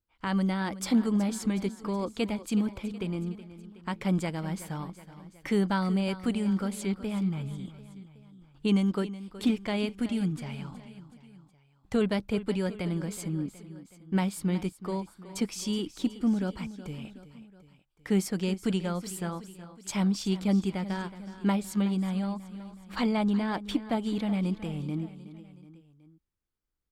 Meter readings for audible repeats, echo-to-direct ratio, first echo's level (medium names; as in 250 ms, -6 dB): 3, -13.5 dB, -15.0 dB